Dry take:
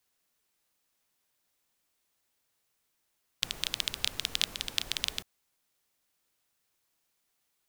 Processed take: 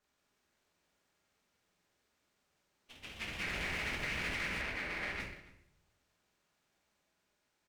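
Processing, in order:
partials spread apart or drawn together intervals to 81%
convolution reverb RT60 0.65 s, pre-delay 5 ms, DRR −3 dB
delay with pitch and tempo change per echo 160 ms, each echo +2 semitones, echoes 3, each echo −6 dB
high-shelf EQ 2,200 Hz −8.5 dB
in parallel at −11.5 dB: sample-and-hold swept by an LFO 34×, swing 60% 0.98 Hz
on the sum: slap from a distant wall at 49 metres, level −21 dB
brickwall limiter −27.5 dBFS, peak gain reduction 8.5 dB
0:04.61–0:05.20: bass and treble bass −5 dB, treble −11 dB
windowed peak hold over 3 samples

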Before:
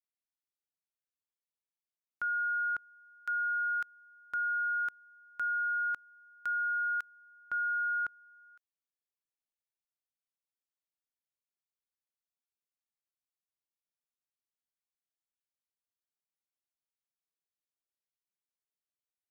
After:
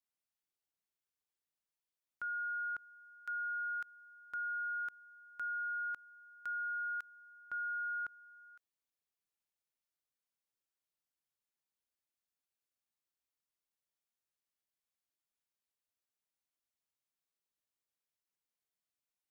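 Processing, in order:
brickwall limiter −35.5 dBFS, peak gain reduction 7 dB

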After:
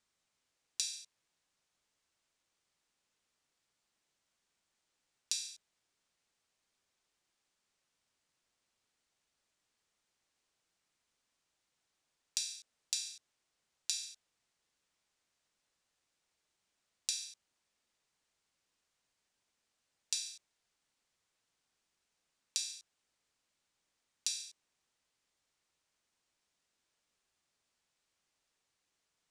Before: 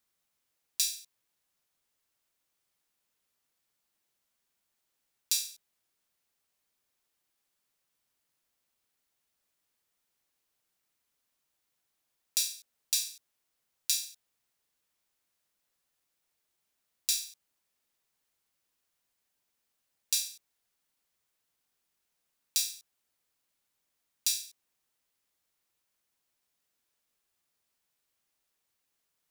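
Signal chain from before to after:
low-pass filter 8,500 Hz 24 dB per octave
downward compressor 10 to 1, threshold −33 dBFS, peak gain reduction 8.5 dB
level +1 dB

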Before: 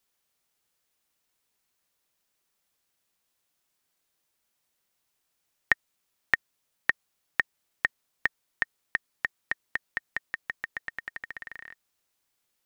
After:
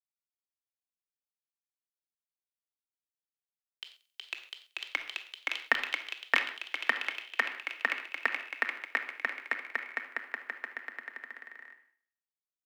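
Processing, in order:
Butterworth high-pass 230 Hz 96 dB per octave
dynamic equaliser 1,900 Hz, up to −7 dB, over −40 dBFS, Q 2.5
in parallel at −1 dB: brickwall limiter −11.5 dBFS, peak gain reduction 6.5 dB
on the sum: downward compressor 1.5 to 1, threshold −25 dBFS, peak gain reduction 3.5 dB
echo machine with several playback heads 76 ms, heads first and second, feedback 48%, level −19 dB
on a send at −4 dB: convolution reverb, pre-delay 4 ms
on the sum: delay with pitch and tempo change per echo 143 ms, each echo +3 semitones, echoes 3
multiband upward and downward expander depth 100%
level −5 dB

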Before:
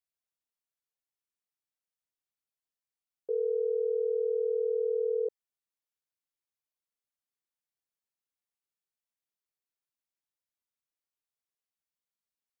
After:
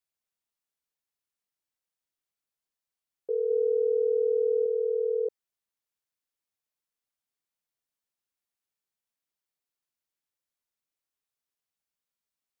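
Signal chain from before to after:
0:03.50–0:04.66: low-shelf EQ 340 Hz +6.5 dB
level +2 dB

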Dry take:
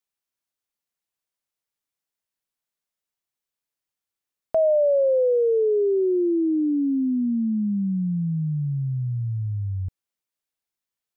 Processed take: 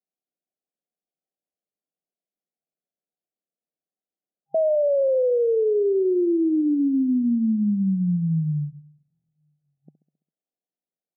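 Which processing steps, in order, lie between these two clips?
repeating echo 67 ms, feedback 59%, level −15 dB
brickwall limiter −18.5 dBFS, peak gain reduction 5.5 dB
brick-wall band-pass 140–800 Hz
level +2 dB

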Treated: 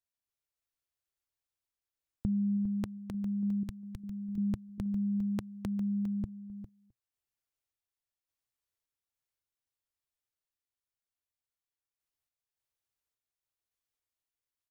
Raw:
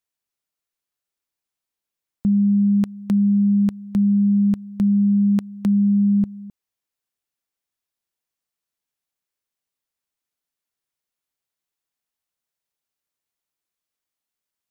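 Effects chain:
drawn EQ curve 120 Hz 0 dB, 180 Hz −17 dB, 300 Hz −8 dB
sample-and-hold tremolo 3.5 Hz
0:03.63–0:04.38: parametric band 520 Hz −12 dB 3 octaves
single-tap delay 404 ms −12 dB
level +2.5 dB

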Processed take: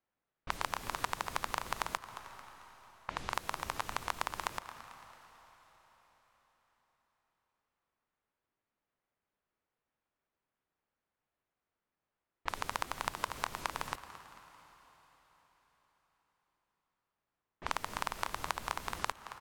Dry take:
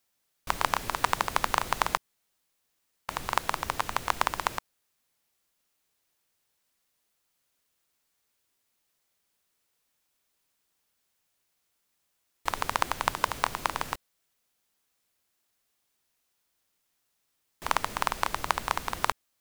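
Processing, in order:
low-pass that shuts in the quiet parts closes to 1,600 Hz, open at −29.5 dBFS
echo with shifted repeats 222 ms, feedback 44%, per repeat +52 Hz, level −18 dB
comb and all-pass reverb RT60 4.9 s, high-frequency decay 1×, pre-delay 105 ms, DRR 18 dB
downward compressor 2.5 to 1, threshold −29 dBFS, peak gain reduction 8 dB
level −3.5 dB

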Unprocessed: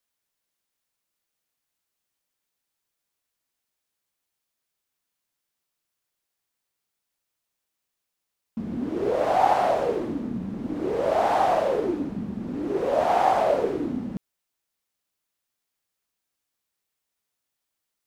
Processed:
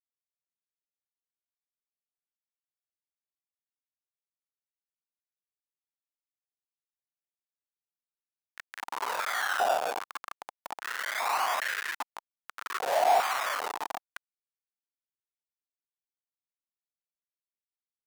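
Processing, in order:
sample-and-hold swept by an LFO 13×, swing 160% 0.22 Hz
comparator with hysteresis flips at −23.5 dBFS
high-pass on a step sequencer 2.5 Hz 740–1,700 Hz

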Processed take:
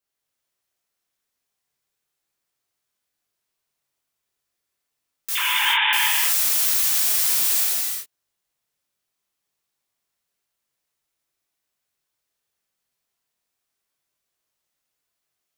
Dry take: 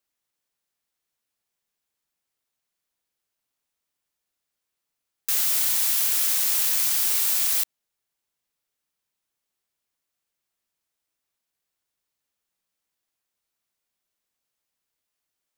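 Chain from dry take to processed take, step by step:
0:05.35–0:05.93: three sine waves on the formant tracks
chorus effect 0.34 Hz, delay 19.5 ms, depth 3.7 ms
reverb whose tail is shaped and stops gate 410 ms flat, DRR −5 dB

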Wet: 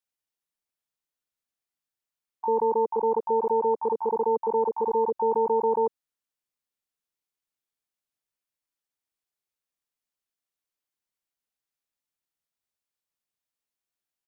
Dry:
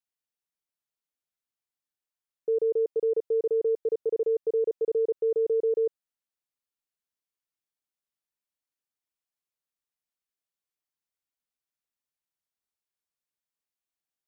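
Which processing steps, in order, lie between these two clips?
pitch-shifted copies added −12 semitones −16 dB, +12 semitones −3 dB

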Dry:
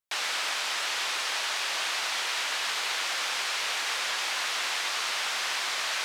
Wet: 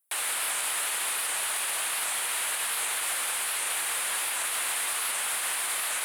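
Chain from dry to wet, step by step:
high shelf with overshoot 7,500 Hz +11.5 dB, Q 3
brickwall limiter −21.5 dBFS, peak gain reduction 7 dB
soft clipping −23.5 dBFS, distortion −21 dB
wow of a warped record 78 rpm, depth 100 cents
level +2.5 dB

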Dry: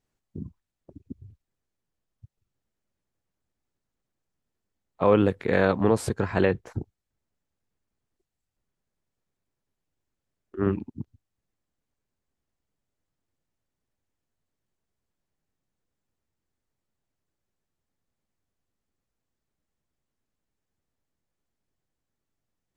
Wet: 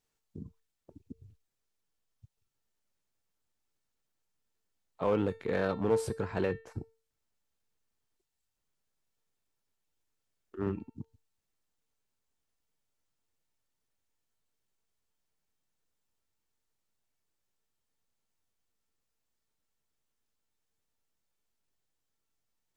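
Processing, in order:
parametric band 1,900 Hz −2.5 dB
tuned comb filter 450 Hz, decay 0.35 s, harmonics all, mix 70%
in parallel at −11.5 dB: wave folding −29 dBFS
on the sum: one half of a high-frequency compander encoder only

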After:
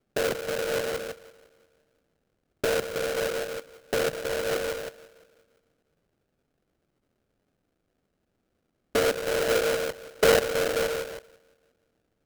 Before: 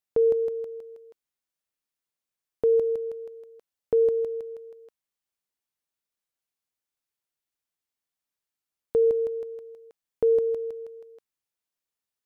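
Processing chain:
in parallel at −6.5 dB: sine wavefolder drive 15 dB, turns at −16 dBFS
on the sum: treble cut that deepens with the level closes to 350 Hz, closed at −20.5 dBFS
hard clipping −19.5 dBFS, distortion −17 dB
Butterworth band-reject 800 Hz, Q 0.81
on a send: feedback echo with a band-pass in the loop 173 ms, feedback 53%, band-pass 390 Hz, level −23 dB
on the sum: high-pass filter sweep 130 Hz → 780 Hz, 0:07.62–0:11.45
sample-rate reduction 1,000 Hz, jitter 20%
level +1 dB

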